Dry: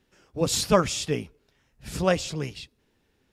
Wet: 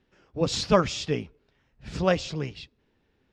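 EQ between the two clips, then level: dynamic EQ 5600 Hz, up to +5 dB, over -43 dBFS, Q 0.82; air absorption 150 m; 0.0 dB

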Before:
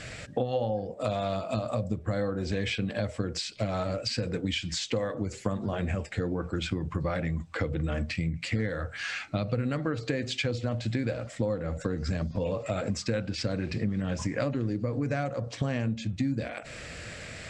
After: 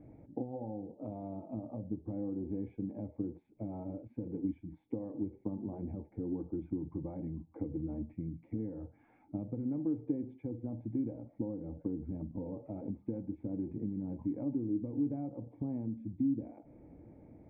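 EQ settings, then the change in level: vocal tract filter u; +1.5 dB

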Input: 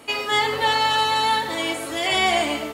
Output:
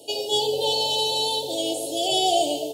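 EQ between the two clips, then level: HPF 120 Hz 24 dB/oct; inverse Chebyshev band-stop 1100–2200 Hz, stop band 40 dB; fixed phaser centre 510 Hz, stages 4; +3.5 dB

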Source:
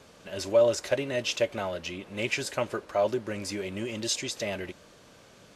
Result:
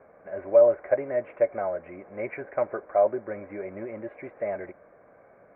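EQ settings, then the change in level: rippled Chebyshev low-pass 2300 Hz, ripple 3 dB; bell 730 Hz +12 dB 1.8 oct; notch 900 Hz, Q 9.1; -6.0 dB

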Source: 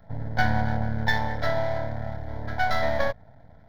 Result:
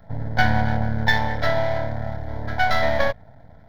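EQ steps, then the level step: dynamic EQ 2700 Hz, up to +5 dB, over -46 dBFS, Q 1.9; +4.0 dB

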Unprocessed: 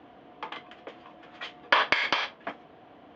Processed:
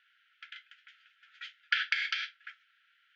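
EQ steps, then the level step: brick-wall FIR high-pass 1300 Hz; -5.0 dB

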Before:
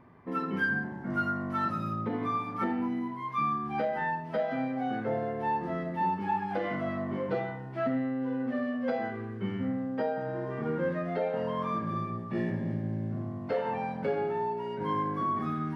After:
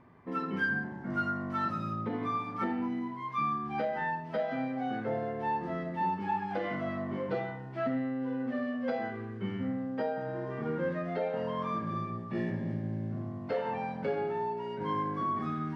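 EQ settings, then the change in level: air absorption 77 m; high shelf 4500 Hz +9.5 dB; -2.0 dB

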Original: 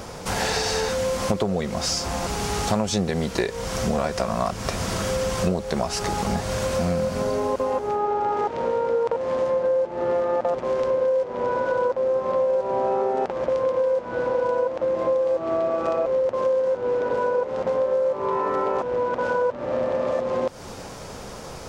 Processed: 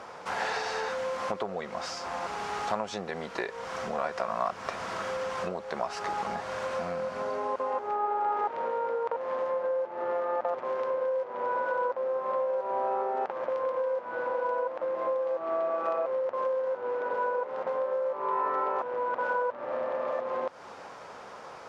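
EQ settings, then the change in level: band-pass 1200 Hz, Q 0.95; -2.0 dB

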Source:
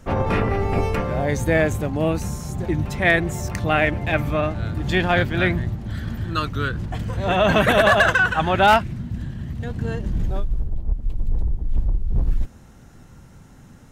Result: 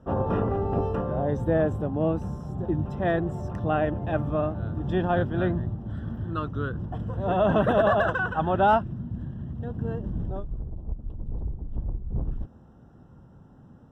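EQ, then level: running mean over 20 samples; HPF 87 Hz 6 dB/oct; -2.5 dB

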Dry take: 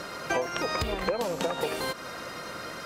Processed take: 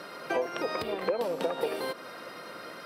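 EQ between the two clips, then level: HPF 180 Hz 12 dB/oct; dynamic EQ 440 Hz, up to +6 dB, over -42 dBFS, Q 0.91; bell 6800 Hz -14.5 dB 0.31 oct; -5.0 dB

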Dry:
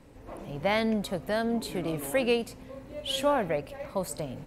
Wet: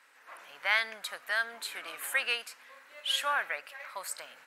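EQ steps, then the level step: resonant high-pass 1500 Hz, resonance Q 2.6; 0.0 dB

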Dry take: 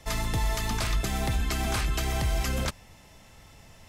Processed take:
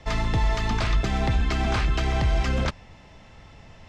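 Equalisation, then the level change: air absorption 150 m; +5.0 dB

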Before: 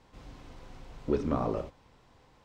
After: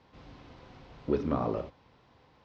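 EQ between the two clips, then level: HPF 63 Hz; LPF 5200 Hz 24 dB/oct; 0.0 dB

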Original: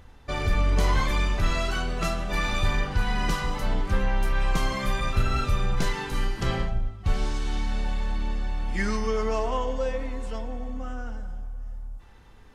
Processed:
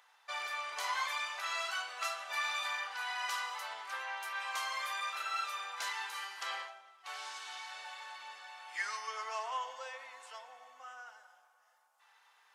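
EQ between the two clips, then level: HPF 830 Hz 24 dB/oct; -5.0 dB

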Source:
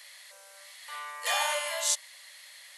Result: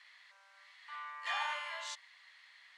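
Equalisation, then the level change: HPF 940 Hz 24 dB/oct; tape spacing loss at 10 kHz 32 dB; 0.0 dB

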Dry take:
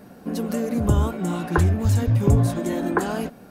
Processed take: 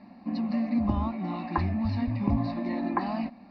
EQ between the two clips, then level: elliptic low-pass 4500 Hz, stop band 40 dB; resonant low shelf 180 Hz -6.5 dB, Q 3; fixed phaser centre 2200 Hz, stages 8; -1.5 dB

